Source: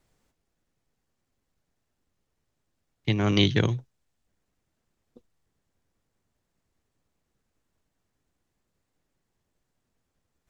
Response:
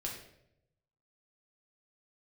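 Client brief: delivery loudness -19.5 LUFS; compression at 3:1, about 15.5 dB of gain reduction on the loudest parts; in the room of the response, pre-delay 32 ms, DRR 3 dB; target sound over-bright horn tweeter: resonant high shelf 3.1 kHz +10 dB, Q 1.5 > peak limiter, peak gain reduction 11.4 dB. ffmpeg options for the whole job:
-filter_complex "[0:a]acompressor=threshold=0.0112:ratio=3,asplit=2[s0][s1];[1:a]atrim=start_sample=2205,adelay=32[s2];[s1][s2]afir=irnorm=-1:irlink=0,volume=0.668[s3];[s0][s3]amix=inputs=2:normalize=0,highshelf=f=3100:t=q:w=1.5:g=10,volume=11.9,alimiter=limit=0.447:level=0:latency=1"

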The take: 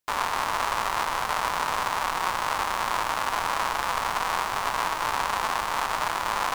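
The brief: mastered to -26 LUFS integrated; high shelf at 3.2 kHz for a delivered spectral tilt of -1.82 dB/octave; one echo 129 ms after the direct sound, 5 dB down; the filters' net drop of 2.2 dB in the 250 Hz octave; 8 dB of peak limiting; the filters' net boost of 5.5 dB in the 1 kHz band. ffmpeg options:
-af "equalizer=f=250:t=o:g=-3.5,equalizer=f=1000:t=o:g=6,highshelf=f=3200:g=4.5,alimiter=limit=0.2:level=0:latency=1,aecho=1:1:129:0.562,volume=0.891"

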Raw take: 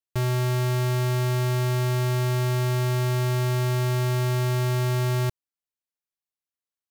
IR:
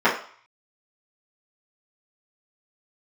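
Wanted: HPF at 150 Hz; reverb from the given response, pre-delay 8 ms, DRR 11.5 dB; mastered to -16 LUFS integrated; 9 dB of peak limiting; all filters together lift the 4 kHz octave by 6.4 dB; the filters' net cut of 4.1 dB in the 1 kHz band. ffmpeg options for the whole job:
-filter_complex "[0:a]highpass=150,equalizer=f=1000:t=o:g=-5.5,equalizer=f=4000:t=o:g=8.5,alimiter=limit=0.0668:level=0:latency=1,asplit=2[s0][s1];[1:a]atrim=start_sample=2205,adelay=8[s2];[s1][s2]afir=irnorm=-1:irlink=0,volume=0.0237[s3];[s0][s3]amix=inputs=2:normalize=0,volume=11.2"

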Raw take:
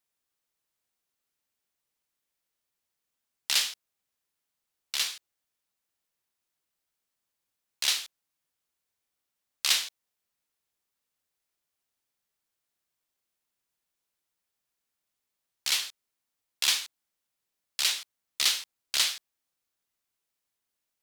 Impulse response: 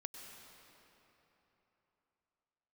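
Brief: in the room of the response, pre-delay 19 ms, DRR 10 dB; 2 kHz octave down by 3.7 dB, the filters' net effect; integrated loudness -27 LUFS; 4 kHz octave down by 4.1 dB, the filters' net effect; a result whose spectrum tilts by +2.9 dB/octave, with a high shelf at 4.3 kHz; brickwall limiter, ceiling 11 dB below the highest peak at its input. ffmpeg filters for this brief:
-filter_complex "[0:a]equalizer=f=2000:t=o:g=-3.5,equalizer=f=4000:t=o:g=-7,highshelf=f=4300:g=5,alimiter=limit=0.0891:level=0:latency=1,asplit=2[s0][s1];[1:a]atrim=start_sample=2205,adelay=19[s2];[s1][s2]afir=irnorm=-1:irlink=0,volume=0.447[s3];[s0][s3]amix=inputs=2:normalize=0,volume=2.37"

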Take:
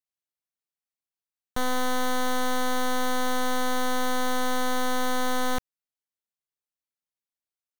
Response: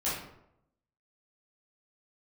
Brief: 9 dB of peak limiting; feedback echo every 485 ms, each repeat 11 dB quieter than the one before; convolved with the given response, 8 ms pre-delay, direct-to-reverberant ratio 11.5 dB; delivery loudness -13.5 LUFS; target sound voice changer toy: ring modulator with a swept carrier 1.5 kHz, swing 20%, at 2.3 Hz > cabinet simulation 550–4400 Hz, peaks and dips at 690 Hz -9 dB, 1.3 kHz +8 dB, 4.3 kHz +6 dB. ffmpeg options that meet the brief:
-filter_complex "[0:a]alimiter=level_in=2.66:limit=0.0631:level=0:latency=1,volume=0.376,aecho=1:1:485|970|1455:0.282|0.0789|0.0221,asplit=2[s0][s1];[1:a]atrim=start_sample=2205,adelay=8[s2];[s1][s2]afir=irnorm=-1:irlink=0,volume=0.112[s3];[s0][s3]amix=inputs=2:normalize=0,aeval=exprs='val(0)*sin(2*PI*1500*n/s+1500*0.2/2.3*sin(2*PI*2.3*n/s))':c=same,highpass=550,equalizer=f=690:t=q:w=4:g=-9,equalizer=f=1300:t=q:w=4:g=8,equalizer=f=4300:t=q:w=4:g=6,lowpass=f=4400:w=0.5412,lowpass=f=4400:w=1.3066,volume=7.08"

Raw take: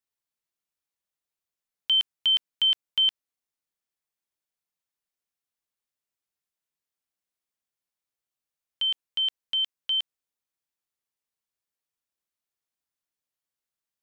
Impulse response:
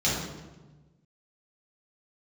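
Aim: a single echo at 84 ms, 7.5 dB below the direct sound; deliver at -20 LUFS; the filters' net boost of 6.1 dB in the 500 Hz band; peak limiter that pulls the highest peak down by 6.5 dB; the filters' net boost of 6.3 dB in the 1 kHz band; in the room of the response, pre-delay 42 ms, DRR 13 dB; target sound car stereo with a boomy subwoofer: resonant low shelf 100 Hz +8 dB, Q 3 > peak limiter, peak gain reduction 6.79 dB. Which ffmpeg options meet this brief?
-filter_complex "[0:a]equalizer=f=500:t=o:g=6,equalizer=f=1000:t=o:g=6.5,alimiter=limit=0.0794:level=0:latency=1,aecho=1:1:84:0.422,asplit=2[s0][s1];[1:a]atrim=start_sample=2205,adelay=42[s2];[s1][s2]afir=irnorm=-1:irlink=0,volume=0.0531[s3];[s0][s3]amix=inputs=2:normalize=0,lowshelf=f=100:t=q:w=3:g=8,volume=3.76,alimiter=limit=0.15:level=0:latency=1"

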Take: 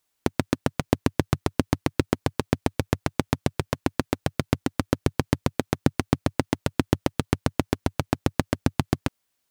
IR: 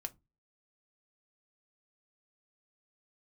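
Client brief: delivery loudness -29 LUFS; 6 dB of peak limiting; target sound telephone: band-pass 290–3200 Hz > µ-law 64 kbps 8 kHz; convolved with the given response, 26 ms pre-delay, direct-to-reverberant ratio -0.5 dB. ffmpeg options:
-filter_complex "[0:a]alimiter=limit=0.398:level=0:latency=1,asplit=2[s0][s1];[1:a]atrim=start_sample=2205,adelay=26[s2];[s1][s2]afir=irnorm=-1:irlink=0,volume=1.41[s3];[s0][s3]amix=inputs=2:normalize=0,highpass=290,lowpass=3200,volume=1.33" -ar 8000 -c:a pcm_mulaw

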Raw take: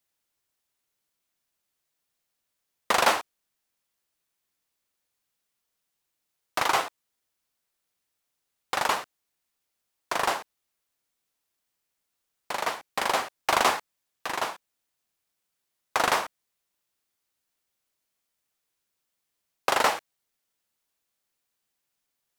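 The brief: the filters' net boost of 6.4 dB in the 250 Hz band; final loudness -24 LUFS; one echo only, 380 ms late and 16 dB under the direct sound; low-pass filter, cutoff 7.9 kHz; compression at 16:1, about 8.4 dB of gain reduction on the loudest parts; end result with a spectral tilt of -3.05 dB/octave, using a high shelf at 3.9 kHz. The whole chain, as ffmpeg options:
-af "lowpass=7900,equalizer=f=250:t=o:g=8.5,highshelf=f=3900:g=-8.5,acompressor=threshold=0.0501:ratio=16,aecho=1:1:380:0.158,volume=3.16"

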